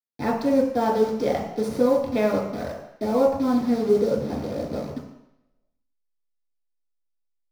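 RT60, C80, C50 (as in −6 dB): 0.80 s, 7.5 dB, 4.0 dB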